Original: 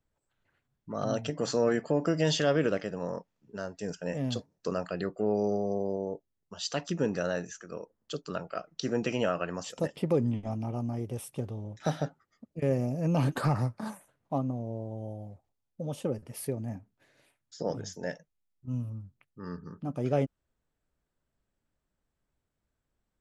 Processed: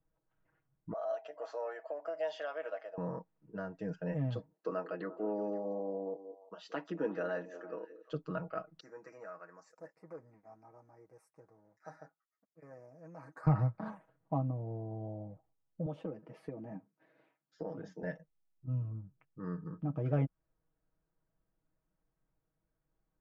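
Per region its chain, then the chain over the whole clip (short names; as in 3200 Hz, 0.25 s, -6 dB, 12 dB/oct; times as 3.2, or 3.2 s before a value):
0.93–2.98 ladder high-pass 600 Hz, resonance 70% + high shelf 2300 Hz +10.5 dB
4.53–8.12 HPF 250 Hz 24 dB/oct + delay with a stepping band-pass 0.175 s, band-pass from 350 Hz, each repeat 1.4 oct, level -11 dB
8.8–13.47 sample leveller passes 1 + Butterworth band-stop 3200 Hz, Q 0.98 + differentiator
15.86–18.03 HPF 170 Hz 24 dB/oct + compressor 2:1, threshold -36 dBFS
whole clip: LPF 1500 Hz 12 dB/oct; dynamic EQ 430 Hz, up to -5 dB, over -39 dBFS, Q 0.73; comb 6.3 ms, depth 76%; gain -2.5 dB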